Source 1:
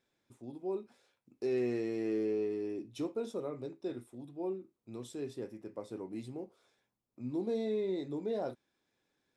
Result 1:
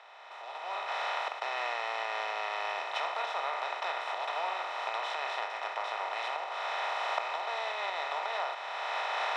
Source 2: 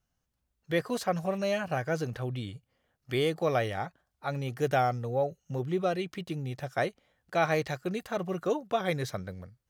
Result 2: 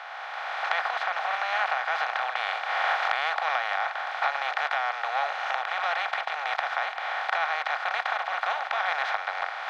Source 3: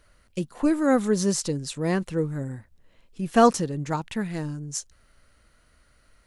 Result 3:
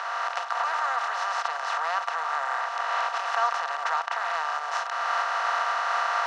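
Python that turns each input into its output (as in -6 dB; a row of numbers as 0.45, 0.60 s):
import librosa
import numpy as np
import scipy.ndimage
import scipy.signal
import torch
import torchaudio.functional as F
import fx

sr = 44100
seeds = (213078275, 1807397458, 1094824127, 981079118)

y = fx.bin_compress(x, sr, power=0.2)
y = fx.recorder_agc(y, sr, target_db=-4.5, rise_db_per_s=19.0, max_gain_db=30)
y = scipy.signal.sosfilt(scipy.signal.butter(6, 820.0, 'highpass', fs=sr, output='sos'), y)
y = fx.air_absorb(y, sr, metres=260.0)
y = y * librosa.db_to_amplitude(-3.5)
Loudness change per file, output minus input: +3.5, +3.5, -2.0 LU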